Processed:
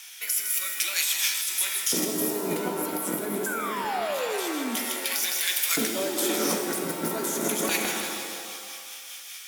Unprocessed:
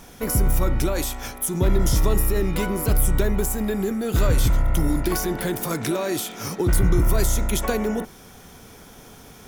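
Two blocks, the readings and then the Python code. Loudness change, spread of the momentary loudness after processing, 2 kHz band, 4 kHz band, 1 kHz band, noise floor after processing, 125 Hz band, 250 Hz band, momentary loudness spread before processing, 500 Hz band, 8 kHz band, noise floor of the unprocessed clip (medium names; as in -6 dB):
-3.0 dB, 9 LU, +2.5 dB, +5.5 dB, -0.5 dB, -42 dBFS, -21.0 dB, -6.5 dB, 6 LU, -5.0 dB, +3.0 dB, -46 dBFS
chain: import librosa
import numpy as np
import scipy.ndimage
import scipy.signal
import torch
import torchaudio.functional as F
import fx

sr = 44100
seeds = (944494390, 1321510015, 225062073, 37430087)

y = fx.octave_divider(x, sr, octaves=2, level_db=2.0)
y = fx.rotary_switch(y, sr, hz=0.6, then_hz=5.0, switch_at_s=4.71)
y = scipy.signal.sosfilt(scipy.signal.butter(4, 160.0, 'highpass', fs=sr, output='sos'), y)
y = fx.filter_lfo_highpass(y, sr, shape='square', hz=0.26, low_hz=280.0, high_hz=2500.0, q=1.7)
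y = fx.echo_feedback(y, sr, ms=159, feedback_pct=57, wet_db=-10.5)
y = fx.spec_paint(y, sr, seeds[0], shape='fall', start_s=3.46, length_s=1.3, low_hz=220.0, high_hz=1600.0, level_db=-25.0)
y = fx.high_shelf(y, sr, hz=5700.0, db=4.5)
y = fx.over_compress(y, sr, threshold_db=-30.0, ratio=-1.0)
y = fx.low_shelf(y, sr, hz=250.0, db=-5.5)
y = fx.rev_shimmer(y, sr, seeds[1], rt60_s=1.6, semitones=7, shimmer_db=-2, drr_db=5.0)
y = F.gain(torch.from_numpy(y), 1.5).numpy()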